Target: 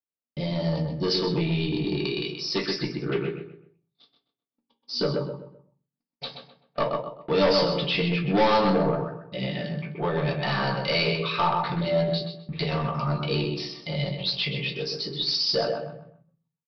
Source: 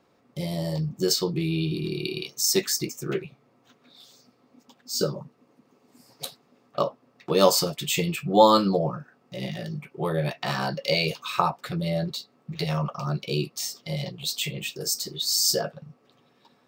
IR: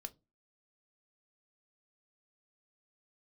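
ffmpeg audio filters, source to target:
-filter_complex "[0:a]agate=range=-47dB:threshold=-48dB:ratio=16:detection=peak,equalizer=frequency=2200:width=1.5:gain=2,asplit=2[link_01][link_02];[link_02]adelay=128,lowpass=frequency=2500:poles=1,volume=-5dB,asplit=2[link_03][link_04];[link_04]adelay=128,lowpass=frequency=2500:poles=1,volume=0.33,asplit=2[link_05][link_06];[link_06]adelay=128,lowpass=frequency=2500:poles=1,volume=0.33,asplit=2[link_07][link_08];[link_08]adelay=128,lowpass=frequency=2500:poles=1,volume=0.33[link_09];[link_01][link_03][link_05][link_07][link_09]amix=inputs=5:normalize=0,aresample=11025,asoftclip=type=tanh:threshold=-21dB,aresample=44100,asplit=2[link_10][link_11];[link_11]adelay=17,volume=-11dB[link_12];[link_10][link_12]amix=inputs=2:normalize=0[link_13];[1:a]atrim=start_sample=2205,asetrate=29106,aresample=44100[link_14];[link_13][link_14]afir=irnorm=-1:irlink=0,acontrast=23"

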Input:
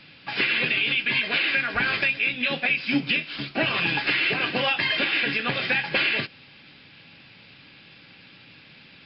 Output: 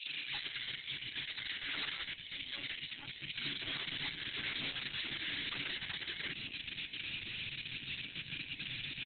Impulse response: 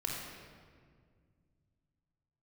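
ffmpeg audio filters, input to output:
-filter_complex "[0:a]acrossover=split=200|2700[link_01][link_02][link_03];[link_02]adelay=60[link_04];[link_01]adelay=280[link_05];[link_05][link_04][link_03]amix=inputs=3:normalize=0,alimiter=limit=-18.5dB:level=0:latency=1:release=44,asetnsamples=nb_out_samples=441:pad=0,asendcmd='3.52 equalizer g 10.5',equalizer=frequency=240:width=0.88:gain=4.5,asoftclip=type=tanh:threshold=-31.5dB,firequalizer=gain_entry='entry(140,0);entry(220,-16);entry(320,-6);entry(460,-17);entry(1100,-9);entry(2600,10);entry(6800,-1)':delay=0.05:min_phase=1,flanger=delay=7.1:depth=4.2:regen=27:speed=0.24:shape=sinusoidal,acrossover=split=240[link_06][link_07];[link_06]acompressor=threshold=-41dB:ratio=6[link_08];[link_08][link_07]amix=inputs=2:normalize=0,bandreject=frequency=690:width=12,acompressor=threshold=-38dB:ratio=12,afftfilt=real='re*lt(hypot(re,im),0.02)':imag='im*lt(hypot(re,im),0.02)':win_size=1024:overlap=0.75,volume=7.5dB" -ar 48000 -c:a libopus -b:a 6k

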